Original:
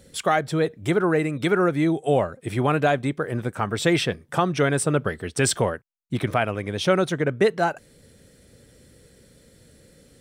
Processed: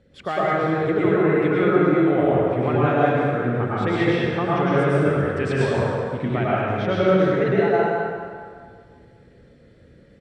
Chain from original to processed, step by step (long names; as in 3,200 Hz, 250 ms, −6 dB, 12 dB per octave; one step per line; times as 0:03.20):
low-pass filter 2,400 Hz 12 dB per octave
parametric band 900 Hz −2 dB 0.88 octaves
far-end echo of a speakerphone 210 ms, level −9 dB
dense smooth reverb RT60 1.9 s, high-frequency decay 0.75×, pre-delay 90 ms, DRR −7.5 dB
level −5.5 dB